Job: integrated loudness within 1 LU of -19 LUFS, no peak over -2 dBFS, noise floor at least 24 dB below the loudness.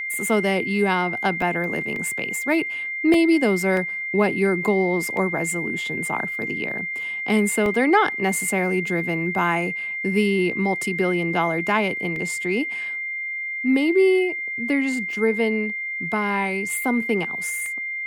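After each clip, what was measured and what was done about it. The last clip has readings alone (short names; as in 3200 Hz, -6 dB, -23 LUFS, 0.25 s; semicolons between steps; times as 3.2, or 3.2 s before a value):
dropouts 8; longest dropout 1.8 ms; steady tone 2100 Hz; tone level -26 dBFS; loudness -22.0 LUFS; peak -4.5 dBFS; loudness target -19.0 LUFS
-> interpolate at 1.42/1.96/3.14/3.77/5.17/7.66/12.16/17.66, 1.8 ms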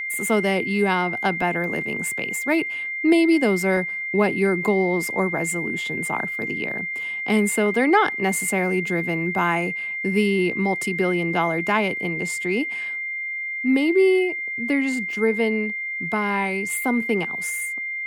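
dropouts 0; steady tone 2100 Hz; tone level -26 dBFS
-> notch 2100 Hz, Q 30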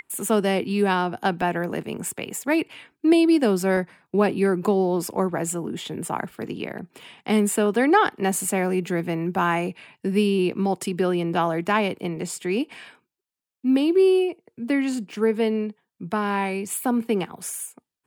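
steady tone none; loudness -23.5 LUFS; peak -5.5 dBFS; loudness target -19.0 LUFS
-> gain +4.5 dB; limiter -2 dBFS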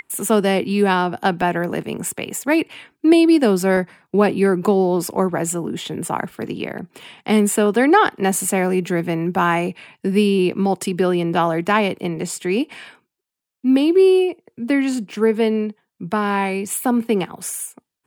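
loudness -19.0 LUFS; peak -2.0 dBFS; noise floor -78 dBFS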